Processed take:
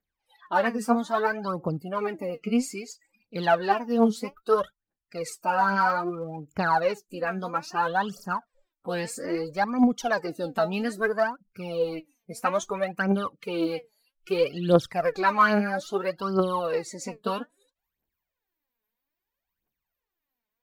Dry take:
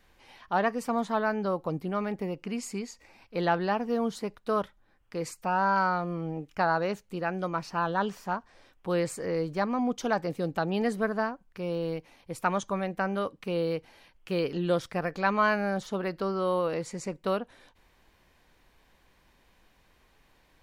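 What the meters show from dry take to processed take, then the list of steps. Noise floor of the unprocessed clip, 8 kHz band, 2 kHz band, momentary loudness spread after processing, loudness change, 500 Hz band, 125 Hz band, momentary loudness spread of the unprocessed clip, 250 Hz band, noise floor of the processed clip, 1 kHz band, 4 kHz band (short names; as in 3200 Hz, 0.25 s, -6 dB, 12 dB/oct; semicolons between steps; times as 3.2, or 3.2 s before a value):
-65 dBFS, +3.5 dB, +3.5 dB, 12 LU, +3.5 dB, +3.0 dB, +0.5 dB, 9 LU, +3.5 dB, under -85 dBFS, +3.5 dB, +3.5 dB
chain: spectral noise reduction 28 dB; low shelf 62 Hz -11.5 dB; phaser 0.61 Hz, delay 4.8 ms, feedback 76%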